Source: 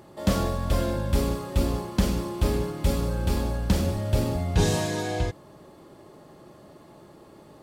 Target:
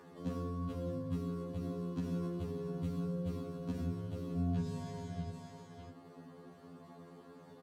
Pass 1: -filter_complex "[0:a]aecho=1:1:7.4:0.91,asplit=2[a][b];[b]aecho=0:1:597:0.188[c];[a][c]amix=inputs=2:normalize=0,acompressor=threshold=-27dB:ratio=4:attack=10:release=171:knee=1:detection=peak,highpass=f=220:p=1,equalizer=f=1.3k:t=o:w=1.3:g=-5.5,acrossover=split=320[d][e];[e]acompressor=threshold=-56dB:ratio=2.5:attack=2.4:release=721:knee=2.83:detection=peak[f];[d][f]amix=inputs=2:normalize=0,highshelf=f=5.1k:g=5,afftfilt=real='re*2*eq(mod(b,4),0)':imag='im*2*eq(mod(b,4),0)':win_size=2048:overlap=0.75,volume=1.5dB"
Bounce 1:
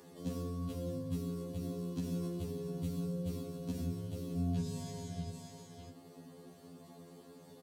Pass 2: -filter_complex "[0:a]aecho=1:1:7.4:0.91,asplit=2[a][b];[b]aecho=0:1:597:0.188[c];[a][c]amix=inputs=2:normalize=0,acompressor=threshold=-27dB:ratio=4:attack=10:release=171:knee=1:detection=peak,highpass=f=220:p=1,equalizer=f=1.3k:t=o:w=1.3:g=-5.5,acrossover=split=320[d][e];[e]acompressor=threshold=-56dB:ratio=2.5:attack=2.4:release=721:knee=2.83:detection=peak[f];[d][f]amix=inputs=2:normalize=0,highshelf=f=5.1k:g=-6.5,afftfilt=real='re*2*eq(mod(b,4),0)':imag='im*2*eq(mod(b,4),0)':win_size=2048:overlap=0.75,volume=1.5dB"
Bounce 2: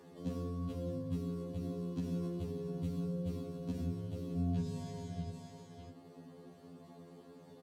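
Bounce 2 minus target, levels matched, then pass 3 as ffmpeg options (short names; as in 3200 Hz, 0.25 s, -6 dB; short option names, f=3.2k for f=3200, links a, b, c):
1000 Hz band -3.5 dB
-filter_complex "[0:a]aecho=1:1:7.4:0.91,asplit=2[a][b];[b]aecho=0:1:597:0.188[c];[a][c]amix=inputs=2:normalize=0,acompressor=threshold=-27dB:ratio=4:attack=10:release=171:knee=1:detection=peak,highpass=f=220:p=1,equalizer=f=1.3k:t=o:w=1.3:g=3,acrossover=split=320[d][e];[e]acompressor=threshold=-56dB:ratio=2.5:attack=2.4:release=721:knee=2.83:detection=peak[f];[d][f]amix=inputs=2:normalize=0,highshelf=f=5.1k:g=-6.5,afftfilt=real='re*2*eq(mod(b,4),0)':imag='im*2*eq(mod(b,4),0)':win_size=2048:overlap=0.75,volume=1.5dB"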